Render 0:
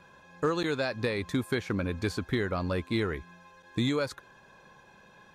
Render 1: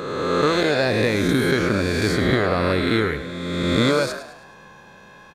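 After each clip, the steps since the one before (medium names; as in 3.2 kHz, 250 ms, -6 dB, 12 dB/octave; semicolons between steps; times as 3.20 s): reverse spectral sustain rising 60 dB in 1.91 s; on a send: frequency-shifting echo 105 ms, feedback 45%, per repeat +51 Hz, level -12 dB; on the sum: trim +6.5 dB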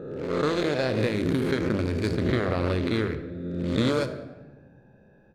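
local Wiener filter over 41 samples; on a send at -10 dB: reverberation RT60 1.1 s, pre-delay 8 ms; on the sum: trim -5 dB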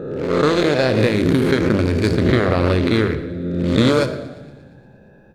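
feedback echo behind a high-pass 117 ms, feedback 62%, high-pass 1.7 kHz, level -20 dB; trim +9 dB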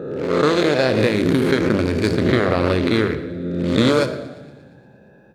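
high-pass 130 Hz 6 dB/octave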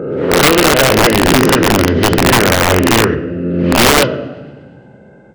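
knee-point frequency compression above 1.4 kHz 1.5:1; integer overflow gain 10.5 dB; trim +8 dB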